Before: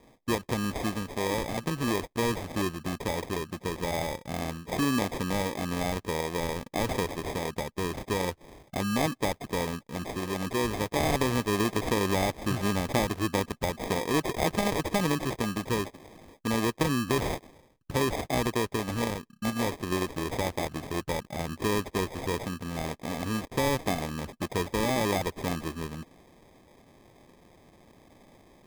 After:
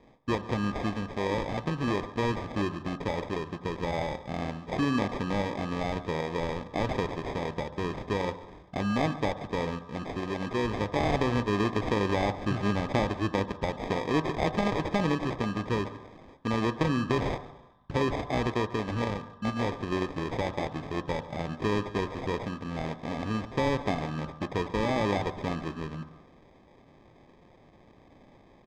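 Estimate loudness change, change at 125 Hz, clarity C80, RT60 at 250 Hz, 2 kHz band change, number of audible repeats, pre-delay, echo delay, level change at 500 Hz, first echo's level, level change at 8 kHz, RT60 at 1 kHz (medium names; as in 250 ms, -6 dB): -0.5 dB, +0.5 dB, 13.5 dB, 1.0 s, -1.0 dB, 1, 3 ms, 142 ms, 0.0 dB, -19.0 dB, -12.5 dB, 1.1 s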